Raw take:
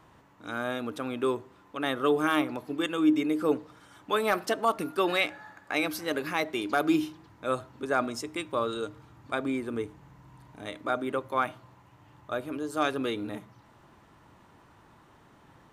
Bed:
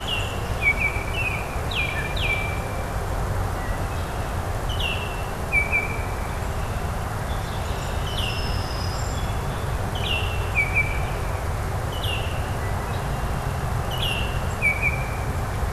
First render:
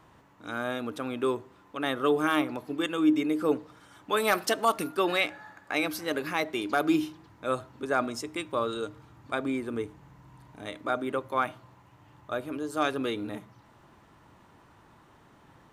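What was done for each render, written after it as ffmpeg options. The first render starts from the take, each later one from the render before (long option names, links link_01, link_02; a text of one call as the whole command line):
ffmpeg -i in.wav -filter_complex "[0:a]asettb=1/sr,asplit=3[link_01][link_02][link_03];[link_01]atrim=end=4.174[link_04];[link_02]atrim=start=4.17:end=4.88,asetpts=PTS-STARTPTS,afade=type=in:duration=0.004:curve=qsin,afade=type=out:start_time=0.706:duration=0.004:curve=qsin,highshelf=frequency=2400:gain=7.5[link_05];[link_03]atrim=start=4.876[link_06];[link_04][link_05]acrossfade=duration=0.004:curve1=hsin:curve2=qsin[link_07];[link_07][link_06]acrossfade=duration=0.004:curve1=qsin:curve2=hsin" out.wav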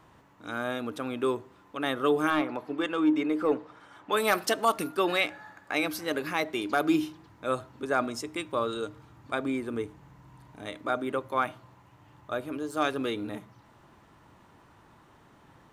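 ffmpeg -i in.wav -filter_complex "[0:a]asettb=1/sr,asplit=3[link_01][link_02][link_03];[link_01]atrim=end=2.304[link_04];[link_02]atrim=start=2.3:end=4.12,asetpts=PTS-STARTPTS,afade=type=in:duration=0.004:curve=qsin,afade=type=out:start_time=1.816:duration=0.004:curve=qsin,asplit=2[link_05][link_06];[link_06]highpass=frequency=720:poles=1,volume=11dB,asoftclip=type=tanh:threshold=-13.5dB[link_07];[link_05][link_07]amix=inputs=2:normalize=0,lowpass=frequency=1400:poles=1,volume=-6dB[link_08];[link_03]atrim=start=4.116[link_09];[link_04][link_08]acrossfade=duration=0.004:curve1=hsin:curve2=qsin[link_10];[link_10][link_09]acrossfade=duration=0.004:curve1=qsin:curve2=hsin,asettb=1/sr,asplit=3[link_11][link_12][link_13];[link_11]atrim=end=12.584[link_14];[link_12]atrim=start=12.58:end=13.11,asetpts=PTS-STARTPTS,afade=type=in:duration=0.004:curve=qsin,afade=type=out:start_time=0.526:duration=0.004:curve=qsin,aeval=exprs='sgn(val(0))*max(abs(val(0))-0.00112,0)':channel_layout=same[link_15];[link_13]atrim=start=13.106[link_16];[link_14][link_15]acrossfade=duration=0.004:curve1=hsin:curve2=qsin[link_17];[link_17][link_16]acrossfade=duration=0.004:curve1=qsin:curve2=hsin" out.wav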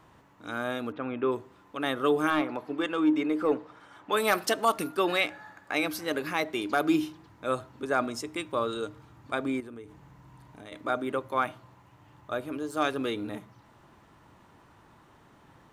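ffmpeg -i in.wav -filter_complex "[0:a]asplit=3[link_01][link_02][link_03];[link_01]afade=type=out:start_time=0.91:duration=0.02[link_04];[link_02]lowpass=frequency=2700:width=0.5412,lowpass=frequency=2700:width=1.3066,afade=type=in:start_time=0.91:duration=0.02,afade=type=out:start_time=1.31:duration=0.02[link_05];[link_03]afade=type=in:start_time=1.31:duration=0.02[link_06];[link_04][link_05][link_06]amix=inputs=3:normalize=0,asettb=1/sr,asplit=3[link_07][link_08][link_09];[link_07]atrim=end=9.604[link_10];[link_08]atrim=start=9.6:end=10.72,asetpts=PTS-STARTPTS,afade=type=in:duration=0.004:curve=qsin,afade=type=out:start_time=1.116:duration=0.004:curve=qsin,acompressor=threshold=-42dB:ratio=4:attack=3.2:release=140:knee=1:detection=peak[link_11];[link_09]atrim=start=10.716[link_12];[link_10][link_11]acrossfade=duration=0.004:curve1=hsin:curve2=qsin[link_13];[link_13][link_12]acrossfade=duration=0.004:curve1=qsin:curve2=hsin" out.wav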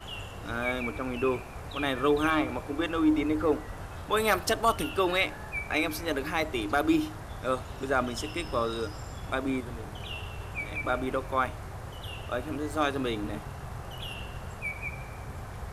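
ffmpeg -i in.wav -i bed.wav -filter_complex "[1:a]volume=-14dB[link_01];[0:a][link_01]amix=inputs=2:normalize=0" out.wav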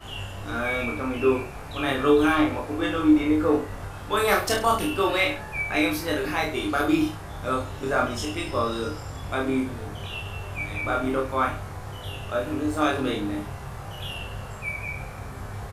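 ffmpeg -i in.wav -filter_complex "[0:a]asplit=2[link_01][link_02];[link_02]adelay=30,volume=-3dB[link_03];[link_01][link_03]amix=inputs=2:normalize=0,aecho=1:1:20|43|69.45|99.87|134.8:0.631|0.398|0.251|0.158|0.1" out.wav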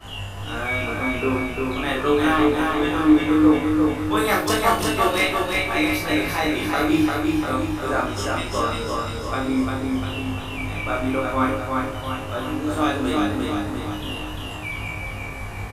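ffmpeg -i in.wav -filter_complex "[0:a]asplit=2[link_01][link_02];[link_02]adelay=19,volume=-4dB[link_03];[link_01][link_03]amix=inputs=2:normalize=0,aecho=1:1:348|696|1044|1392|1740|2088|2436|2784:0.708|0.389|0.214|0.118|0.0648|0.0356|0.0196|0.0108" out.wav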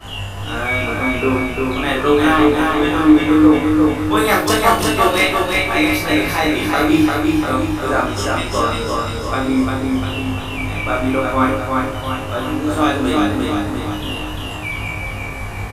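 ffmpeg -i in.wav -af "volume=5.5dB,alimiter=limit=-1dB:level=0:latency=1" out.wav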